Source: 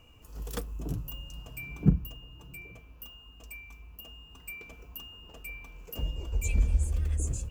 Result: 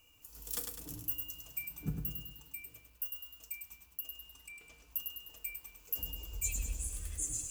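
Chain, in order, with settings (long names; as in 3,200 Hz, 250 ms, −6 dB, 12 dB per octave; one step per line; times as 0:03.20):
first-order pre-emphasis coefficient 0.9
0:04.20–0:04.91: treble cut that deepens with the level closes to 2,600 Hz, closed at −42 dBFS
feedback delay network reverb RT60 0.38 s, low-frequency decay 1.05×, high-frequency decay 0.6×, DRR 6 dB
feedback echo at a low word length 102 ms, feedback 55%, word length 11 bits, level −5 dB
level +3.5 dB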